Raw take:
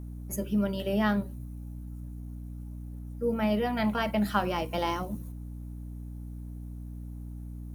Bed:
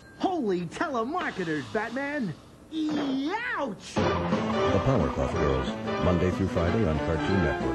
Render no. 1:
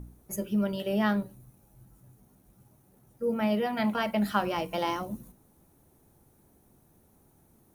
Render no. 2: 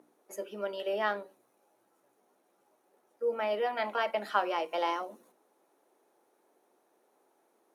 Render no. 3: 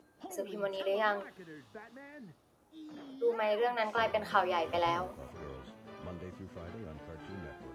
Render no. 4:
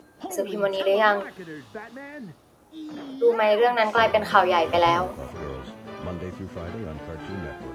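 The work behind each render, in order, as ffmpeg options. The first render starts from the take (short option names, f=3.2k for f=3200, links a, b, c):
-af "bandreject=f=60:t=h:w=4,bandreject=f=120:t=h:w=4,bandreject=f=180:t=h:w=4,bandreject=f=240:t=h:w=4,bandreject=f=300:t=h:w=4"
-af "highpass=f=390:w=0.5412,highpass=f=390:w=1.3066,aemphasis=mode=reproduction:type=50fm"
-filter_complex "[1:a]volume=-20.5dB[a];[0:a][a]amix=inputs=2:normalize=0"
-af "volume=11.5dB,alimiter=limit=-2dB:level=0:latency=1"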